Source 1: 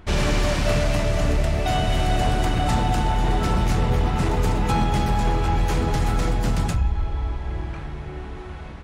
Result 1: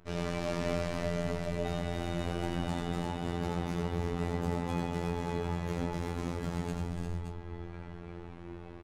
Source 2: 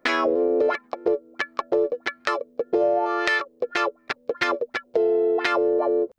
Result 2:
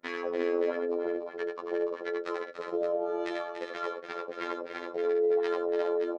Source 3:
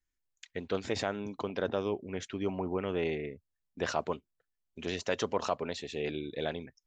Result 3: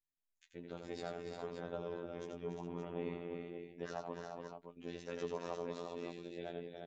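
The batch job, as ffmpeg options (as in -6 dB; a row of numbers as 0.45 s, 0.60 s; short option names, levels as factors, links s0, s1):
-filter_complex "[0:a]tiltshelf=f=1200:g=4,aecho=1:1:5.1:0.37,flanger=delay=7:depth=1.3:regen=57:speed=0.76:shape=triangular,lowshelf=f=64:g=-7.5,asplit=2[s0][s1];[s1]aecho=0:1:87|289|351|408|571:0.531|0.376|0.531|0.266|0.376[s2];[s0][s2]amix=inputs=2:normalize=0,afftfilt=real='hypot(re,im)*cos(PI*b)':imag='0':win_size=2048:overlap=0.75,volume=0.447"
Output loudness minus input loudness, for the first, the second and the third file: -12.5 LU, -8.0 LU, -10.0 LU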